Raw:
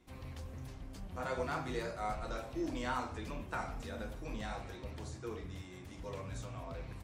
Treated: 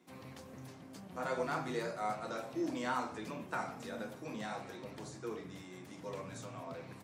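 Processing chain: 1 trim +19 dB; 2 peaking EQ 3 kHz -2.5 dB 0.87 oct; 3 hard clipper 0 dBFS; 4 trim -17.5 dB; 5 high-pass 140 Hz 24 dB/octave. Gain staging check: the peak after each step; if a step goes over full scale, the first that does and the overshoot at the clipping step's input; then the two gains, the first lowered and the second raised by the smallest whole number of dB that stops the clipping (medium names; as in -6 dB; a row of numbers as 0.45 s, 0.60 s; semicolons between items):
-4.0 dBFS, -4.5 dBFS, -4.5 dBFS, -22.0 dBFS, -22.5 dBFS; nothing clips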